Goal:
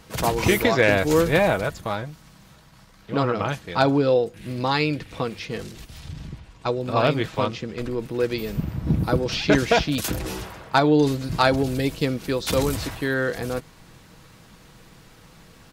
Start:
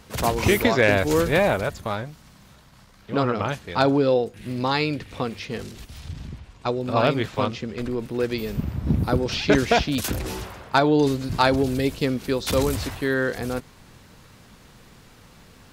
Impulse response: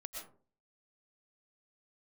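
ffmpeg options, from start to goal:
-af "aecho=1:1:6.2:0.3"

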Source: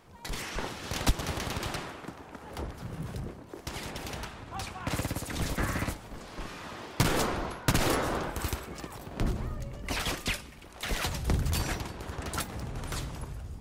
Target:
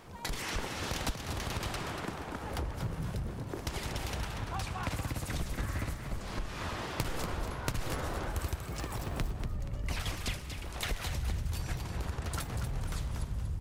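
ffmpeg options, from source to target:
-filter_complex "[0:a]asubboost=boost=2.5:cutoff=120,acompressor=threshold=0.0126:ratio=6,asplit=2[s0][s1];[s1]asplit=4[s2][s3][s4][s5];[s2]adelay=238,afreqshift=44,volume=0.398[s6];[s3]adelay=476,afreqshift=88,volume=0.143[s7];[s4]adelay=714,afreqshift=132,volume=0.0519[s8];[s5]adelay=952,afreqshift=176,volume=0.0186[s9];[s6][s7][s8][s9]amix=inputs=4:normalize=0[s10];[s0][s10]amix=inputs=2:normalize=0,asettb=1/sr,asplit=3[s11][s12][s13];[s11]atrim=end=8.644[s14];[s12]atrim=start=8.64:end=9.31,asetpts=PTS-STARTPTS,afade=t=in:d=0.004:c=qsin,afade=t=out:st=0.666:d=0.004:c=qsin,acrusher=bits=7:mode=log:mix=0:aa=0.000001[s15];[s13]atrim=start=9.306[s16];[s14][s15]acrossfade=d=0.004:c1=hsin:c2=qsin[s17];[s17][s16]acrossfade=d=0.004:c1=qsin:c2=hsin,volume=1.78"

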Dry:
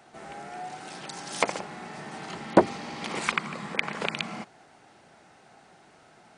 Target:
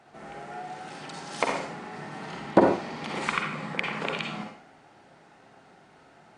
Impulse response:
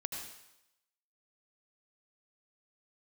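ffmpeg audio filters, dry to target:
-filter_complex "[0:a]highshelf=f=4900:g=-9.5[s0];[1:a]atrim=start_sample=2205,asetrate=74970,aresample=44100[s1];[s0][s1]afir=irnorm=-1:irlink=0,volume=1.88"

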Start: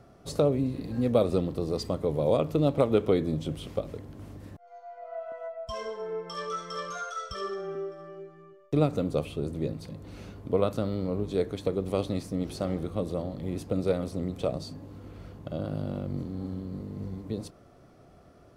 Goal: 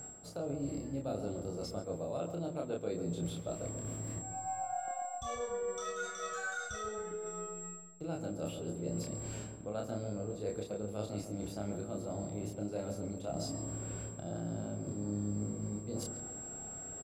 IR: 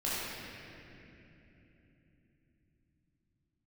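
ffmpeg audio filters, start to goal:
-filter_complex "[0:a]asetrate=48069,aresample=44100,aeval=exprs='val(0)+0.00501*sin(2*PI*7600*n/s)':c=same,areverse,acompressor=threshold=0.01:ratio=6,areverse,asplit=2[s0][s1];[s1]adelay=29,volume=0.75[s2];[s0][s2]amix=inputs=2:normalize=0,asplit=2[s3][s4];[s4]adelay=136,lowpass=f=1300:p=1,volume=0.447,asplit=2[s5][s6];[s6]adelay=136,lowpass=f=1300:p=1,volume=0.53,asplit=2[s7][s8];[s8]adelay=136,lowpass=f=1300:p=1,volume=0.53,asplit=2[s9][s10];[s10]adelay=136,lowpass=f=1300:p=1,volume=0.53,asplit=2[s11][s12];[s12]adelay=136,lowpass=f=1300:p=1,volume=0.53,asplit=2[s13][s14];[s14]adelay=136,lowpass=f=1300:p=1,volume=0.53[s15];[s3][s5][s7][s9][s11][s13][s15]amix=inputs=7:normalize=0,volume=1.12"

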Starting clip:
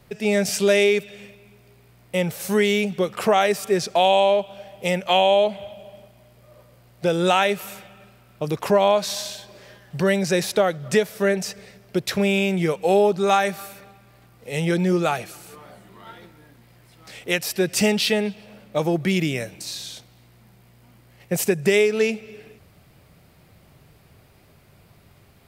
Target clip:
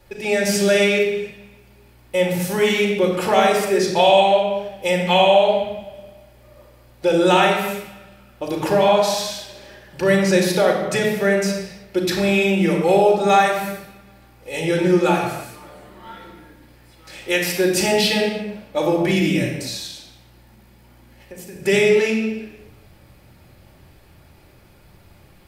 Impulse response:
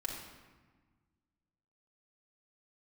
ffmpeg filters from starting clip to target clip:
-filter_complex "[0:a]asettb=1/sr,asplit=3[s0][s1][s2];[s0]atrim=end=19.864[s3];[s1]atrim=start=19.86:end=21.56,asetpts=PTS-STARTPTS,afade=t=in:d=0.004:c=qsin,afade=t=out:st=1.696:d=0.004:c=qsin,acompressor=threshold=0.0126:ratio=10[s4];[s2]atrim=start=21.556[s5];[s3][s4]acrossfade=d=0.004:c1=hsin:c2=qsin[s6];[s6][s5]acrossfade=d=0.004:c1=qsin:c2=hsin[s7];[1:a]atrim=start_sample=2205,afade=t=out:st=0.4:d=0.01,atrim=end_sample=18081[s8];[s7][s8]afir=irnorm=-1:irlink=0,volume=1.33"

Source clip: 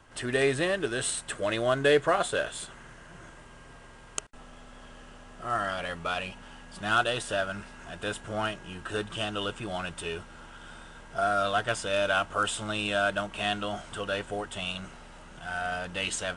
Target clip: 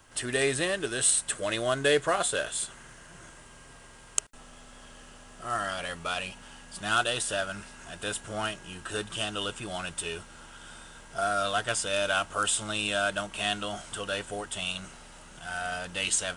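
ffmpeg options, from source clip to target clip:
-af "crystalizer=i=2.5:c=0,volume=0.75"

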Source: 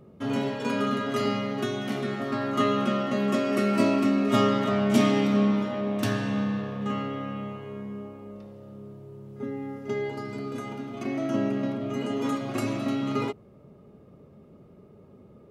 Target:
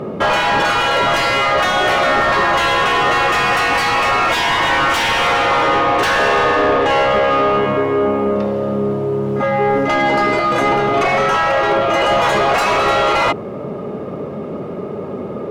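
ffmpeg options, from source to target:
-filter_complex "[0:a]afftfilt=real='re*lt(hypot(re,im),0.0891)':imag='im*lt(hypot(re,im),0.0891)':win_size=1024:overlap=0.75,asplit=2[s0][s1];[s1]highpass=f=720:p=1,volume=50.1,asoftclip=type=tanh:threshold=0.335[s2];[s0][s2]amix=inputs=2:normalize=0,lowpass=f=1100:p=1,volume=0.501,volume=2.37"

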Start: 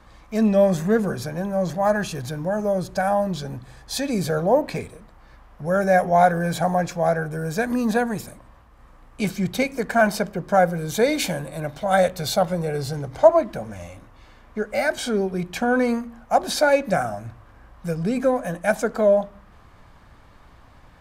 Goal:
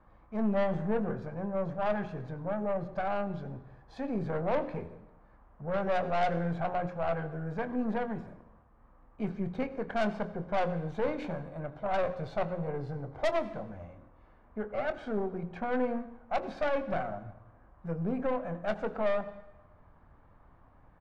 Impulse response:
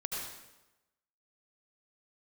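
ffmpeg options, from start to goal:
-filter_complex "[0:a]lowpass=1300,bandreject=f=60:t=h:w=6,bandreject=f=120:t=h:w=6,bandreject=f=180:t=h:w=6,bandreject=f=240:t=h:w=6,bandreject=f=300:t=h:w=6,bandreject=f=360:t=h:w=6,bandreject=f=420:t=h:w=6,bandreject=f=480:t=h:w=6,bandreject=f=540:t=h:w=6,aeval=exprs='(tanh(8.91*val(0)+0.55)-tanh(0.55))/8.91':c=same,asplit=2[s0][s1];[s1]adelay=24,volume=0.2[s2];[s0][s2]amix=inputs=2:normalize=0,asplit=2[s3][s4];[1:a]atrim=start_sample=2205[s5];[s4][s5]afir=irnorm=-1:irlink=0,volume=0.178[s6];[s3][s6]amix=inputs=2:normalize=0,volume=0.447"

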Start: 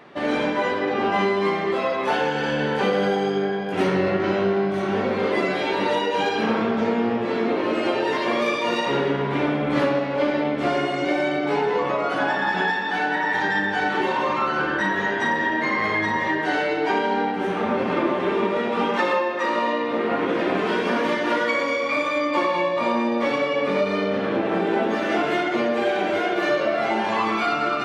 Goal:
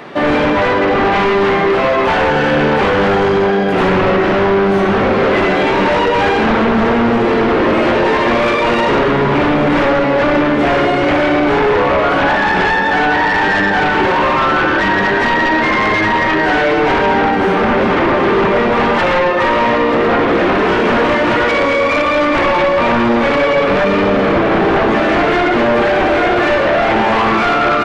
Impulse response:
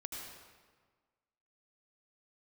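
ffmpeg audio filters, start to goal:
-filter_complex "[0:a]aeval=exprs='0.355*sin(PI/2*3.55*val(0)/0.355)':c=same,aecho=1:1:936|1872|2808|3744|4680|5616:0.168|0.101|0.0604|0.0363|0.0218|0.0131,acrossover=split=2800[s0][s1];[s1]acompressor=threshold=0.0178:ratio=4:attack=1:release=60[s2];[s0][s2]amix=inputs=2:normalize=0"

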